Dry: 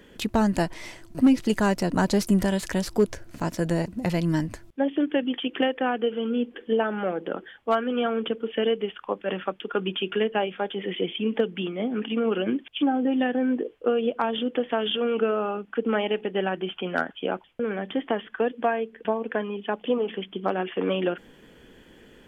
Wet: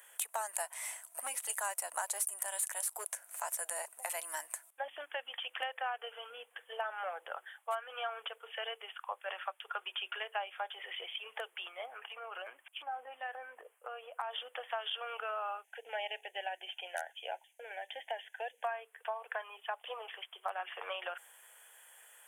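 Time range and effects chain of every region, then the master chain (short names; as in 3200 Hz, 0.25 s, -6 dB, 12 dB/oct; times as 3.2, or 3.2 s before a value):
11.85–14.31 bell 3900 Hz -11 dB 0.69 oct + compressor, threshold -24 dBFS
15.64–18.64 Butterworth band-stop 1200 Hz, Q 1.4 + bell 6300 Hz +13.5 dB 0.25 oct
whole clip: steep high-pass 680 Hz 36 dB/oct; resonant high shelf 6800 Hz +13.5 dB, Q 3; compressor 3:1, threshold -31 dBFS; gain -3.5 dB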